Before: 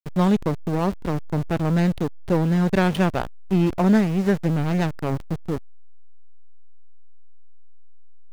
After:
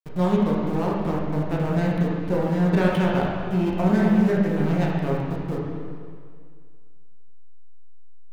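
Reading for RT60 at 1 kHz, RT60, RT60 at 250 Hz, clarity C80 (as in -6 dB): 2.0 s, 2.0 s, 2.0 s, 1.0 dB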